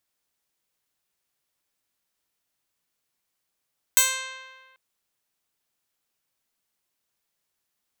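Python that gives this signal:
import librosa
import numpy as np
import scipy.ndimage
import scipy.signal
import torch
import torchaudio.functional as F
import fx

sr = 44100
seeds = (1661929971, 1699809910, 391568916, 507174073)

y = fx.pluck(sr, length_s=0.79, note=72, decay_s=1.56, pick=0.11, brightness='bright')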